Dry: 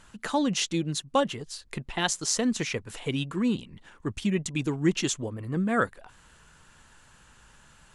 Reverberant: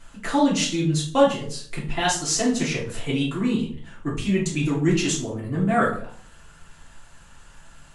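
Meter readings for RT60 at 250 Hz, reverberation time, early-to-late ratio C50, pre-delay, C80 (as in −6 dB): 0.60 s, 0.55 s, 6.5 dB, 3 ms, 11.5 dB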